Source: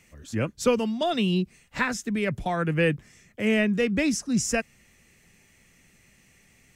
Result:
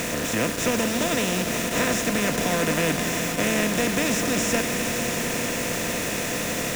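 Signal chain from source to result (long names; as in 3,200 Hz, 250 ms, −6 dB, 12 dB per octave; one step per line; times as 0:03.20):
compressor on every frequency bin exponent 0.2
high-shelf EQ 4,200 Hz +6 dB
bit reduction 4 bits
echo that builds up and dies away 90 ms, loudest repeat 5, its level −15 dB
level −8 dB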